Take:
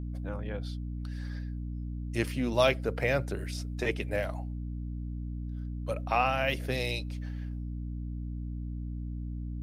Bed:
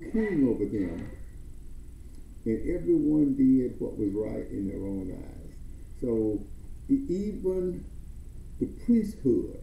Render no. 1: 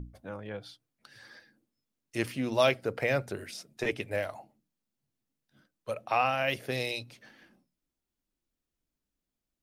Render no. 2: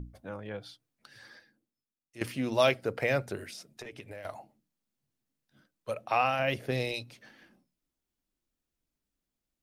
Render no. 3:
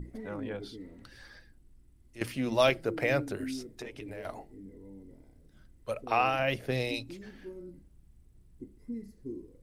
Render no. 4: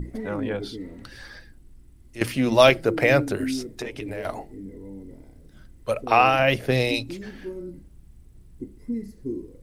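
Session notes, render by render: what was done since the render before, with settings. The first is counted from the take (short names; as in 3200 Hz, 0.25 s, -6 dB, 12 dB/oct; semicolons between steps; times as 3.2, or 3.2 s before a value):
notches 60/120/180/240/300 Hz
1.26–2.21 fade out quadratic, to -14.5 dB; 3.44–4.25 compressor 10:1, threshold -40 dBFS; 6.39–6.94 tilt -1.5 dB/oct
add bed -16 dB
gain +9.5 dB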